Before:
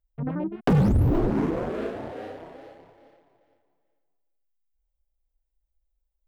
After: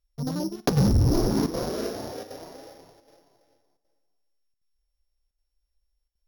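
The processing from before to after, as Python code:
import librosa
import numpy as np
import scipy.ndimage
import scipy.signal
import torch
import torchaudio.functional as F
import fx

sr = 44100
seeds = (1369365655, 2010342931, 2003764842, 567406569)

y = np.r_[np.sort(x[:len(x) // 8 * 8].reshape(-1, 8), axis=1).ravel(), x[len(x) // 8 * 8:]]
y = fx.room_flutter(y, sr, wall_m=9.8, rt60_s=0.22)
y = fx.chopper(y, sr, hz=1.3, depth_pct=60, duty_pct=90)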